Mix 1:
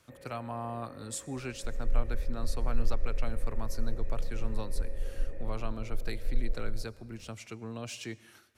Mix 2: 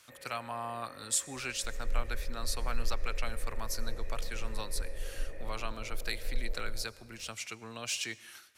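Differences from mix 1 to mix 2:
second sound +4.5 dB; master: add tilt shelf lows -9 dB, about 780 Hz

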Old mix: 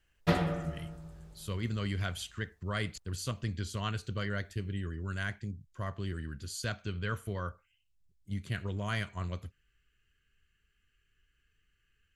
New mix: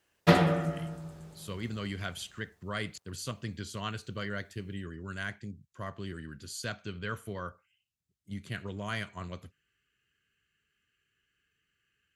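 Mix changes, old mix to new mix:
background +7.0 dB; master: add HPF 130 Hz 12 dB/oct

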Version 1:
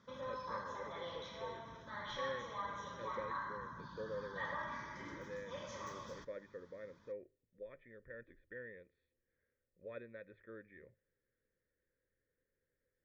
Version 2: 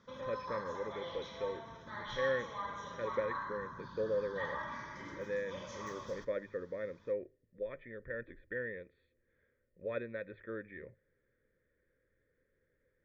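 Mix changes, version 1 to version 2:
speech +10.0 dB; reverb: on, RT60 0.65 s

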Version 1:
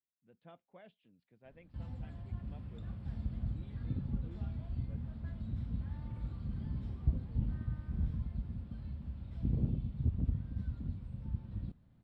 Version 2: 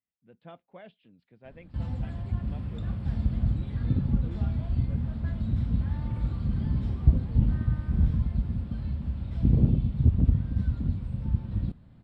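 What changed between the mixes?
speech +9.0 dB; background +11.5 dB

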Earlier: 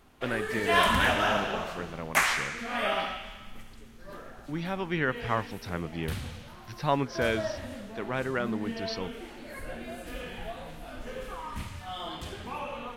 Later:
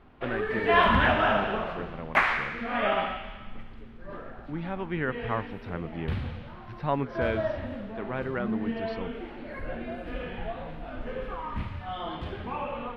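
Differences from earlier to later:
background +5.0 dB; master: add air absorption 400 m

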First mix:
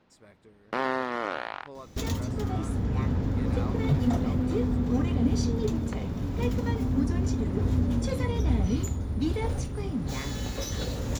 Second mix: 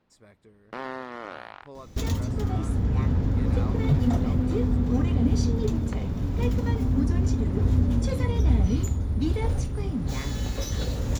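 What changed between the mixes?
first sound -7.0 dB; master: add low shelf 100 Hz +7.5 dB

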